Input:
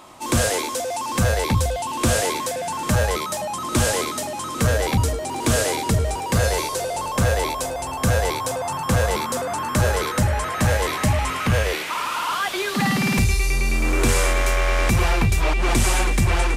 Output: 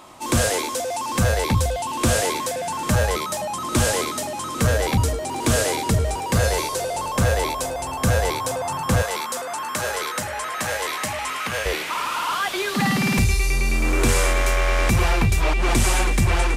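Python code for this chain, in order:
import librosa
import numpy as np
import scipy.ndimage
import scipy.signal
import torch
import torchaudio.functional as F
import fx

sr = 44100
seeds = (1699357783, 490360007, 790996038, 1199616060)

y = fx.highpass(x, sr, hz=820.0, slope=6, at=(9.02, 11.66))
y = fx.quant_float(y, sr, bits=8)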